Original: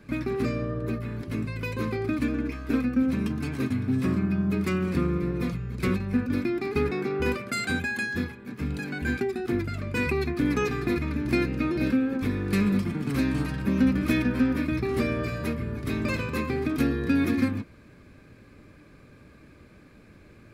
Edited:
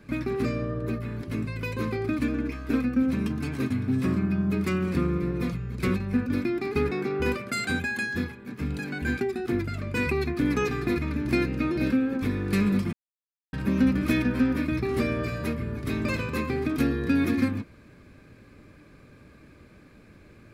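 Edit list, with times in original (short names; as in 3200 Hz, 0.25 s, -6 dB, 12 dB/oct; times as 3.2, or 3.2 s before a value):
12.93–13.53 mute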